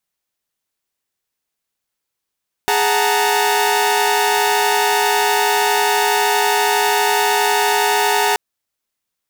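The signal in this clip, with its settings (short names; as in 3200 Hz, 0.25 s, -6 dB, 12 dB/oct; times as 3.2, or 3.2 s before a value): chord G#4/F#5/A5/A#5 saw, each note -17 dBFS 5.68 s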